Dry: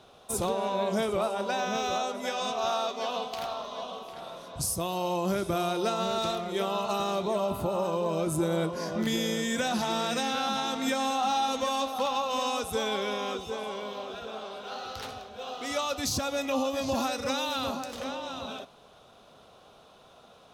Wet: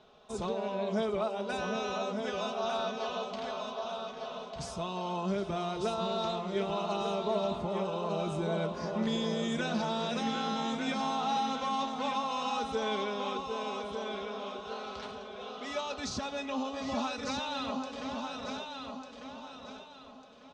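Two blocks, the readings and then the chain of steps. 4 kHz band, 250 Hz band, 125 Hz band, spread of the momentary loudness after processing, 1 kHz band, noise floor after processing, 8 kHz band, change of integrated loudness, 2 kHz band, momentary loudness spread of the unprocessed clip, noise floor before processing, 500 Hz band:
-5.0 dB, -2.5 dB, -2.5 dB, 10 LU, -3.5 dB, -50 dBFS, -11.0 dB, -4.0 dB, -4.0 dB, 10 LU, -56 dBFS, -3.5 dB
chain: Bessel low-pass 4.7 kHz, order 8; comb 4.7 ms, depth 51%; feedback delay 1198 ms, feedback 31%, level -6 dB; trim -5.5 dB

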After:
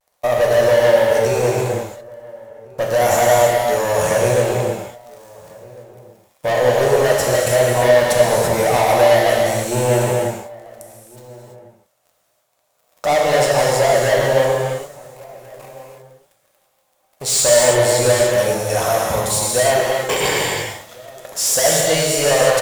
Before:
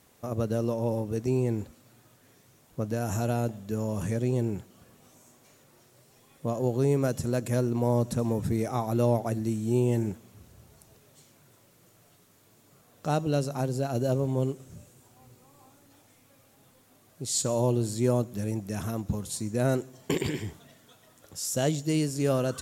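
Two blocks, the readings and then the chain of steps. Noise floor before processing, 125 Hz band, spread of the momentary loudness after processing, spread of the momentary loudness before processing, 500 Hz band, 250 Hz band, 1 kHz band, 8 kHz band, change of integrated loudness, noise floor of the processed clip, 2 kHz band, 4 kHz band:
-61 dBFS, +3.5 dB, 11 LU, 9 LU, +16.0 dB, +1.5 dB, +18.0 dB, +17.5 dB, +13.0 dB, -64 dBFS, +22.0 dB, +19.0 dB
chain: resonant low shelf 420 Hz -13.5 dB, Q 3; waveshaping leveller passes 5; vibrato 0.42 Hz 31 cents; echo from a far wall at 240 m, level -22 dB; gated-style reverb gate 360 ms flat, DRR -3 dB; trim -1.5 dB

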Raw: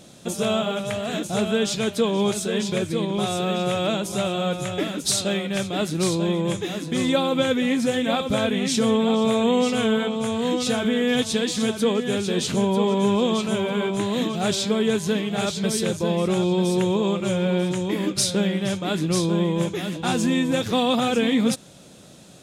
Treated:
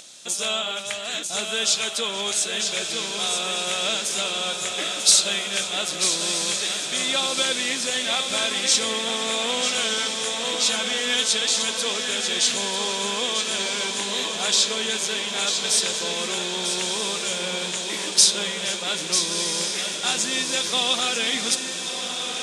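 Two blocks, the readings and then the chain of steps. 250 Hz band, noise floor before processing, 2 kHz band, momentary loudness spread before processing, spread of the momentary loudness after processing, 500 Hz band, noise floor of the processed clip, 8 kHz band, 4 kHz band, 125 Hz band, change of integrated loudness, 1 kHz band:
-14.5 dB, -39 dBFS, +4.0 dB, 5 LU, 6 LU, -8.0 dB, -30 dBFS, +9.5 dB, +8.0 dB, -17.0 dB, +1.0 dB, -2.5 dB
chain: frequency weighting ITU-R 468; on a send: echo that smears into a reverb 1320 ms, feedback 69%, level -6.5 dB; on the sum: upward compressor, threshold -40 dBFS; trim -3.5 dB

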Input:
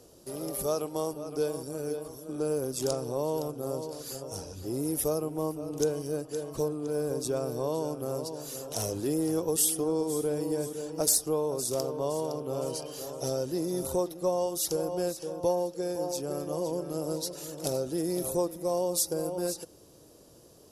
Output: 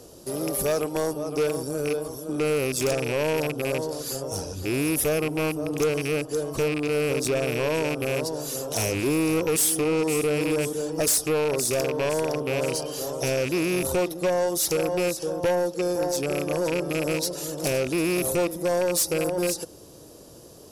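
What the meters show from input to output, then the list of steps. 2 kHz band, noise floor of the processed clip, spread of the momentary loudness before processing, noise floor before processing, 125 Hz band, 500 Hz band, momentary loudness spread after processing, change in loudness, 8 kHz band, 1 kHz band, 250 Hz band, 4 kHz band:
+20.5 dB, -47 dBFS, 8 LU, -55 dBFS, +6.5 dB, +5.5 dB, 6 LU, +6.0 dB, +4.5 dB, +5.5 dB, +6.0 dB, +7.5 dB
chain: rattle on loud lows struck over -36 dBFS, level -27 dBFS; saturation -26.5 dBFS, distortion -12 dB; trim +8.5 dB

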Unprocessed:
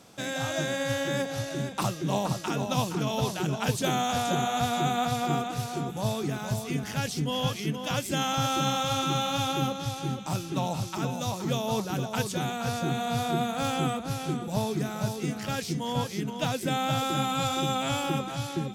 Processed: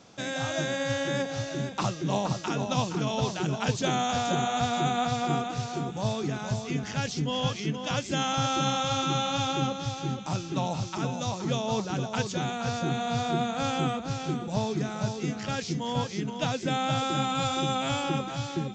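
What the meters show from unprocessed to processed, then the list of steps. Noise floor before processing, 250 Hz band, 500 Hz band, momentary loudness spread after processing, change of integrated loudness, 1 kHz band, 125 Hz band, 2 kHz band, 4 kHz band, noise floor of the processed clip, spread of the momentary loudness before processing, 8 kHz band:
-38 dBFS, 0.0 dB, 0.0 dB, 5 LU, 0.0 dB, 0.0 dB, 0.0 dB, 0.0 dB, 0.0 dB, -38 dBFS, 5 LU, -1.5 dB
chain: resampled via 16 kHz

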